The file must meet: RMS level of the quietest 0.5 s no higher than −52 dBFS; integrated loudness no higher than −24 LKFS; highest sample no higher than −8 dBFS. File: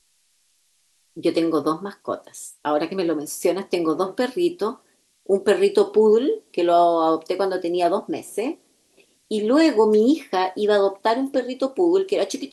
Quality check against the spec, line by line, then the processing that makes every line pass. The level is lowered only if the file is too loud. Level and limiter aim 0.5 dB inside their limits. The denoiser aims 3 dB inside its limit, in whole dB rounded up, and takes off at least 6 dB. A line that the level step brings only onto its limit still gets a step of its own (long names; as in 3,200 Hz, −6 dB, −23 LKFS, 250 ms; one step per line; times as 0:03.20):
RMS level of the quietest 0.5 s −64 dBFS: in spec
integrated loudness −21.0 LKFS: out of spec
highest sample −5.5 dBFS: out of spec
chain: level −3.5 dB